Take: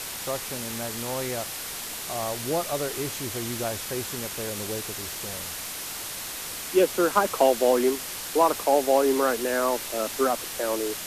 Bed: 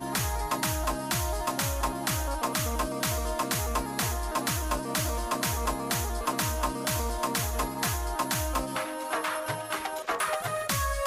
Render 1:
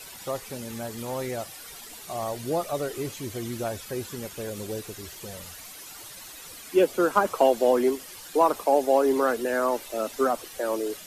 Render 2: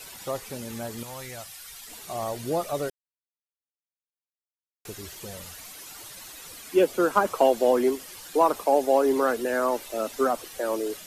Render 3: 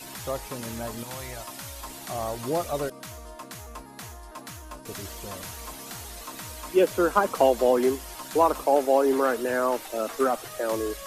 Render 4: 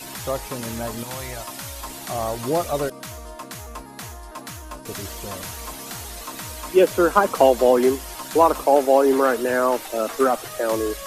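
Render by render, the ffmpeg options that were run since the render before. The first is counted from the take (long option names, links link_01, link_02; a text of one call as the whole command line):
ffmpeg -i in.wav -af "afftdn=noise_reduction=12:noise_floor=-35" out.wav
ffmpeg -i in.wav -filter_complex "[0:a]asettb=1/sr,asplit=3[link_01][link_02][link_03];[link_01]atrim=end=1.034[link_04];[link_02]atrim=start=1.03:end=1.88,asetpts=PTS-STARTPTS,afade=type=in:duration=0.004:curve=qsin,afade=type=out:start_time=0.846:duration=0.004:curve=qsin,equalizer=frequency=350:width_type=o:width=2.5:gain=-13.5[link_05];[link_03]atrim=start=1.876[link_06];[link_04][link_05]acrossfade=duration=0.004:curve1=hsin:curve2=qsin[link_07];[link_07][link_06]acrossfade=duration=0.004:curve1=qsin:curve2=hsin,asplit=3[link_08][link_09][link_10];[link_08]atrim=end=2.9,asetpts=PTS-STARTPTS,afade=type=out:start_time=2.896:duration=0.004:curve=hsin[link_11];[link_09]atrim=start=2.9:end=4.85,asetpts=PTS-STARTPTS,volume=0[link_12];[link_10]atrim=start=4.85,asetpts=PTS-STARTPTS,afade=type=in:duration=0.004:curve=hsin[link_13];[link_11][link_12][link_13]concat=n=3:v=0:a=1" out.wav
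ffmpeg -i in.wav -i bed.wav -filter_complex "[1:a]volume=-12dB[link_01];[0:a][link_01]amix=inputs=2:normalize=0" out.wav
ffmpeg -i in.wav -af "volume=5dB" out.wav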